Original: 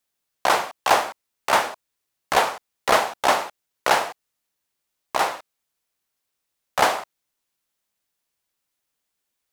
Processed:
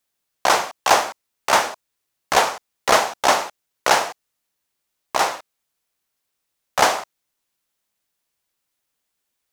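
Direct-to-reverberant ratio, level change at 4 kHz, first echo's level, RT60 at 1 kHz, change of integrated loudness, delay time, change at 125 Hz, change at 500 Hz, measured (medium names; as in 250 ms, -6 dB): no reverb, +4.0 dB, no echo, no reverb, +2.5 dB, no echo, +2.0 dB, +2.0 dB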